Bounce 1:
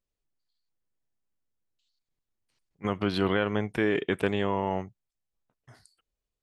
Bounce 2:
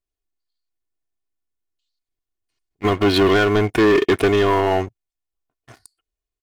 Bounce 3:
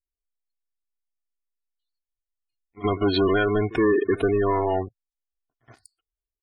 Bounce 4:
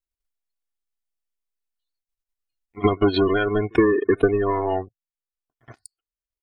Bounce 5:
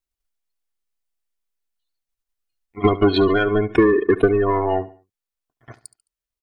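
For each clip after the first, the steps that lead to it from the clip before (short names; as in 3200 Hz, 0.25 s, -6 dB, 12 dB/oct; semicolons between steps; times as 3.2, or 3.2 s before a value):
comb 2.8 ms, depth 67%; sample leveller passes 3; gain +2.5 dB
pre-echo 71 ms -19.5 dB; spectral gate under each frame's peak -20 dB strong; gain -5 dB
transient shaper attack +8 dB, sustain -8 dB
in parallel at -7 dB: soft clip -14.5 dBFS, distortion -15 dB; on the sum: feedback echo 71 ms, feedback 37%, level -17.5 dB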